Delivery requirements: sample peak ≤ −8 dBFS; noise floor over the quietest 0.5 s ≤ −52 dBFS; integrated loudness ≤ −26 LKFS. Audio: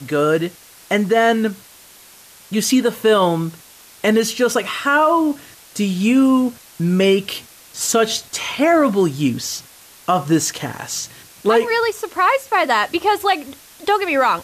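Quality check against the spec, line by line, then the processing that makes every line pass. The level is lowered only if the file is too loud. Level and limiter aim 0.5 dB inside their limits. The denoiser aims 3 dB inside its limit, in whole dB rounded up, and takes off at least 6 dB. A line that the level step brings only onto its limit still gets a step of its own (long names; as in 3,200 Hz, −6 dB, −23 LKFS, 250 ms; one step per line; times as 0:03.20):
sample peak −5.5 dBFS: out of spec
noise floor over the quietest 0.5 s −45 dBFS: out of spec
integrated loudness −18.0 LKFS: out of spec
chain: level −8.5 dB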